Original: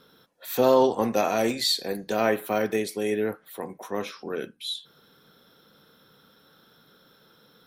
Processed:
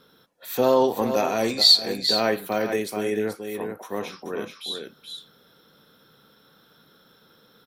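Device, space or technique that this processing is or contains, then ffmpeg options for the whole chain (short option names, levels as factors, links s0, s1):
ducked delay: -filter_complex "[0:a]asettb=1/sr,asplit=3[s0][s1][s2];[s0]atrim=end=1.424[s3];[s1]atrim=start=1.42:end=2.45,asetpts=PTS-STARTPTS,afade=t=in:d=0.004:c=qsin,afade=t=out:st=1.026:d=0.004:c=qsin,equalizer=f=4400:t=o:w=0.44:g=11.5[s4];[s2]atrim=start=2.446[s5];[s3][s4]acrossfade=d=0.004:c1=hsin:c2=qsin[s6];[s6][s5]acrossfade=d=0.004:c1=qsin:c2=hsin,asplit=3[s7][s8][s9];[s8]adelay=430,volume=0.501[s10];[s9]apad=whole_len=356922[s11];[s10][s11]sidechaincompress=threshold=0.0501:ratio=8:attack=16:release=147[s12];[s7][s12]amix=inputs=2:normalize=0"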